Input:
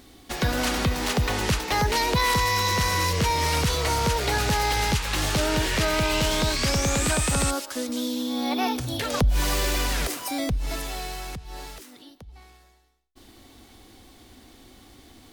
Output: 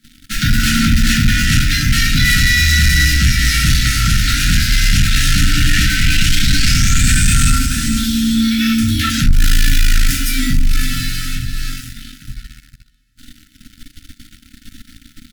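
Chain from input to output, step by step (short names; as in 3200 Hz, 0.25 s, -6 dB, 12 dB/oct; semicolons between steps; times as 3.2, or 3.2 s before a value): frequency shift -22 Hz; feedback echo 0.436 s, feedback 47%, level -11.5 dB; shoebox room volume 60 m³, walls mixed, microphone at 1.1 m; sample leveller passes 3; brick-wall FIR band-stop 300–1300 Hz; 0.74–2.39 dynamic EQ 250 Hz, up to +5 dB, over -29 dBFS, Q 6.2; gain -3.5 dB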